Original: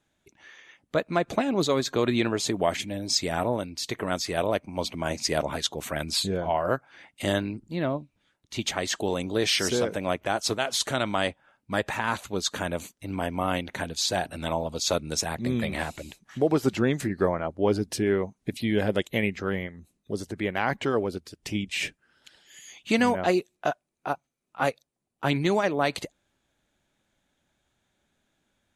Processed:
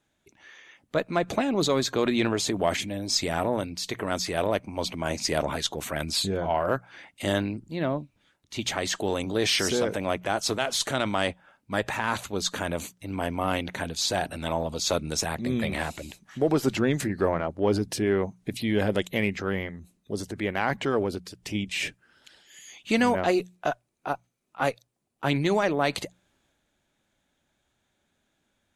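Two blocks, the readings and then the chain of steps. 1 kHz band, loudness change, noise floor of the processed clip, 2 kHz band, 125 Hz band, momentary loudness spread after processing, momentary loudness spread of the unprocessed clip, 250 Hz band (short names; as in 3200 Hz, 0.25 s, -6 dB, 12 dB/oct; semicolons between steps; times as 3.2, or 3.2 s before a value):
0.0 dB, 0.0 dB, -75 dBFS, +0.5 dB, 0.0 dB, 9 LU, 9 LU, 0.0 dB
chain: added harmonics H 6 -35 dB, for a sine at -9.5 dBFS; transient shaper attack -1 dB, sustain +4 dB; notches 60/120/180 Hz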